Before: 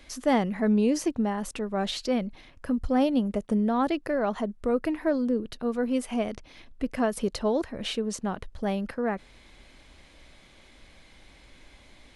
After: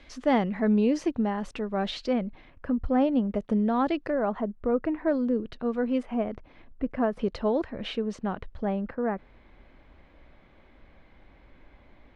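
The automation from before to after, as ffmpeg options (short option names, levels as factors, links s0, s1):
-af "asetnsamples=n=441:p=0,asendcmd='2.13 lowpass f 2200;3.35 lowpass f 4000;4.1 lowpass f 1700;5.08 lowpass f 3000;6.03 lowpass f 1600;7.19 lowpass f 2900;8.65 lowpass f 1600',lowpass=3800"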